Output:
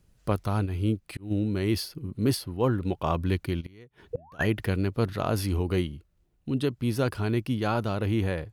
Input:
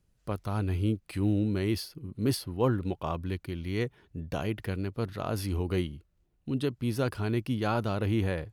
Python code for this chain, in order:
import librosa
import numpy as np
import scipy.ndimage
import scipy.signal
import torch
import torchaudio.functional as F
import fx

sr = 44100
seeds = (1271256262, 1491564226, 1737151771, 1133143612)

y = fx.rider(x, sr, range_db=5, speed_s=0.5)
y = fx.spec_paint(y, sr, seeds[0], shape='rise', start_s=4.13, length_s=0.32, low_hz=450.0, high_hz=2000.0, level_db=-31.0)
y = fx.gate_flip(y, sr, shuts_db=-23.0, range_db=-26, at=(3.6, 4.39), fade=0.02)
y = fx.auto_swell(y, sr, attack_ms=424.0, at=(0.65, 1.3), fade=0.02)
y = y * 10.0 ** (3.5 / 20.0)